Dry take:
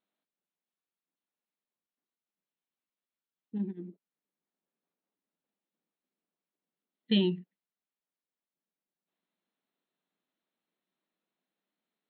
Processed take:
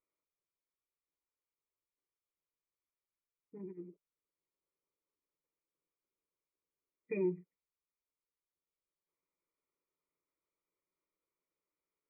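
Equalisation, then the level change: brick-wall FIR low-pass 2500 Hz; low shelf 130 Hz +10.5 dB; fixed phaser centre 1100 Hz, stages 8; -2.0 dB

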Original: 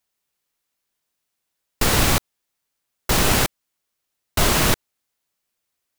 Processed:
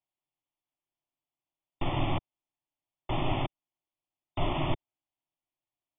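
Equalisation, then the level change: brick-wall FIR low-pass 3600 Hz; air absorption 220 m; fixed phaser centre 310 Hz, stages 8; -6.0 dB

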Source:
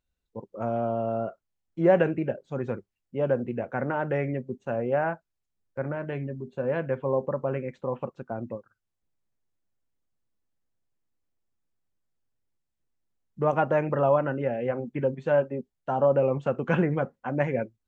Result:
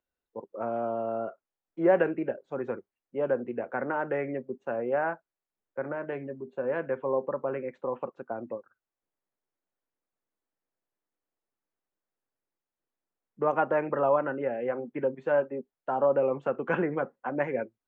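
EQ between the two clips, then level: three-band isolator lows -17 dB, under 270 Hz, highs -13 dB, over 2200 Hz; dynamic EQ 640 Hz, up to -4 dB, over -34 dBFS, Q 1.5; +1.5 dB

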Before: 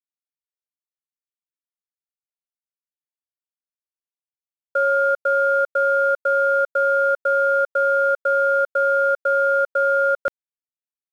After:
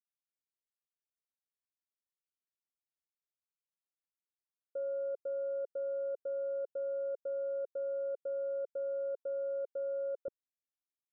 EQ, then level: ladder low-pass 540 Hz, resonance 40%; -6.5 dB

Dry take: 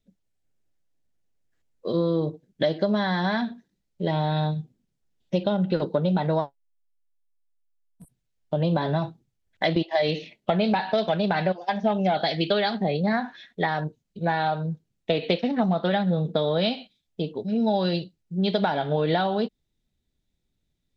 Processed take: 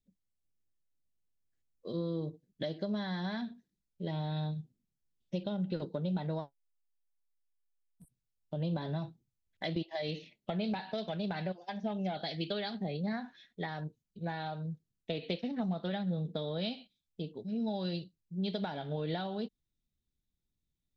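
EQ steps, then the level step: bell 1000 Hz -7.5 dB 2.9 oct; -8.5 dB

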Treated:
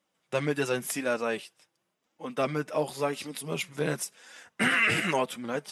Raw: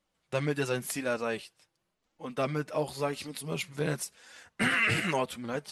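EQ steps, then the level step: HPF 160 Hz 12 dB/oct; notch 4300 Hz, Q 9.9; +2.5 dB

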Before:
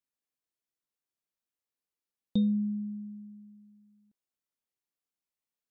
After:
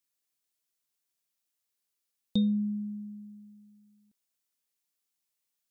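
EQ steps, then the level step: high shelf 2600 Hz +10.5 dB; 0.0 dB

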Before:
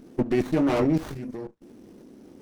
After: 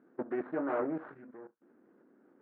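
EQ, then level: HPF 260 Hz 12 dB/oct; dynamic EQ 560 Hz, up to +6 dB, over -36 dBFS, Q 0.84; ladder low-pass 1700 Hz, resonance 60%; -3.5 dB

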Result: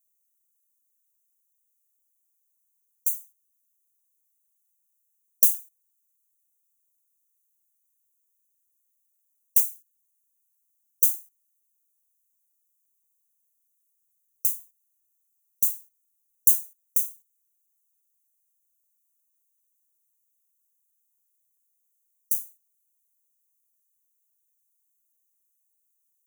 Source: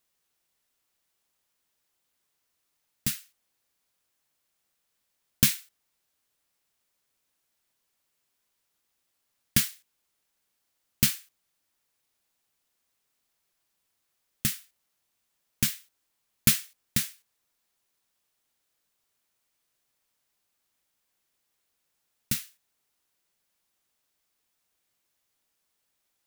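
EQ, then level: brick-wall FIR band-stop 480–5800 Hz; pre-emphasis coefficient 0.9; high shelf 9200 Hz +4 dB; -1.5 dB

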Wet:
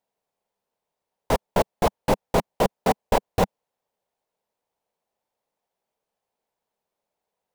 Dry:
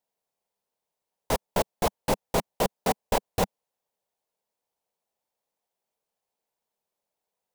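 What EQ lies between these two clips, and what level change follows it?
high shelf 3500 Hz -8.5 dB; +5.0 dB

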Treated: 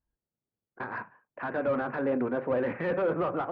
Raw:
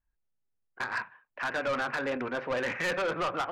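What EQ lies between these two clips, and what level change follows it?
band-pass 250 Hz, Q 0.53; air absorption 230 m; +7.0 dB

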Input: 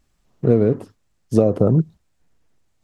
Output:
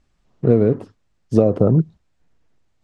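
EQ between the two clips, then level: air absorption 71 m; +1.0 dB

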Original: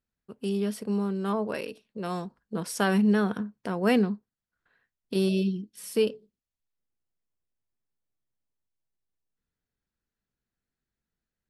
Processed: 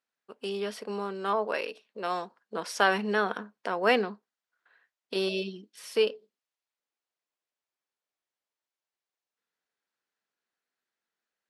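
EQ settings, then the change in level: HPF 560 Hz 12 dB/oct; air absorption 66 m; dynamic EQ 8200 Hz, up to -5 dB, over -60 dBFS, Q 2.1; +5.5 dB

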